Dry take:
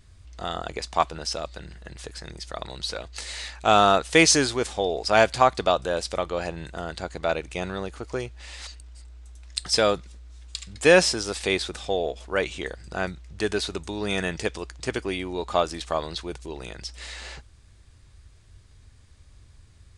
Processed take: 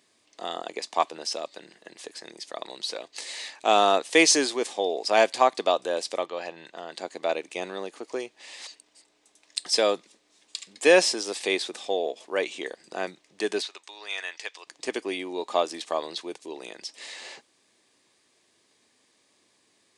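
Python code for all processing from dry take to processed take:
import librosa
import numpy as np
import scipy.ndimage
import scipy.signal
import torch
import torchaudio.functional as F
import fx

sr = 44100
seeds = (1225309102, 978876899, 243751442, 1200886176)

y = fx.chain(x, sr, fx.lowpass(hz=4900.0, slope=12),
    fx.peak_eq(hz=320.0, db=-6.0, octaves=2.0),
    fx.notch(hz=2200.0, q=24.0), at=(6.26, 6.92))
y = fx.chain(y, sr, fx.highpass(hz=1200.0, slope=12),
    fx.air_absorb(metres=71.0), at=(13.62, 14.67))
y = scipy.signal.sosfilt(scipy.signal.butter(4, 260.0, 'highpass', fs=sr, output='sos'), y)
y = fx.peak_eq(y, sr, hz=1400.0, db=-10.0, octaves=0.25)
y = y * librosa.db_to_amplitude(-1.0)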